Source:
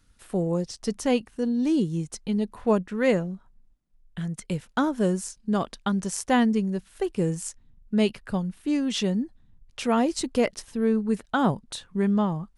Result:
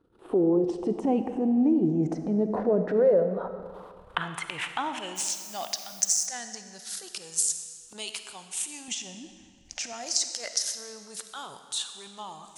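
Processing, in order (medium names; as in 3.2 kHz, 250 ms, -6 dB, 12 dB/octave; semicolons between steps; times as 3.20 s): drifting ripple filter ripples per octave 0.63, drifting -0.26 Hz, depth 8 dB; recorder AGC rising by 56 dB/s; transient shaper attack -10 dB, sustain +10 dB; band-pass sweep 370 Hz -> 6.8 kHz, 2.76–6.00 s; compression, threshold -28 dBFS, peak gain reduction 9 dB; 8.88–9.93 s: RIAA curve playback; reverberation RT60 1.9 s, pre-delay 10 ms, DRR 8 dB; 5.15–6.25 s: added noise violet -54 dBFS; peaking EQ 760 Hz +8.5 dB 0.63 oct; trim +7 dB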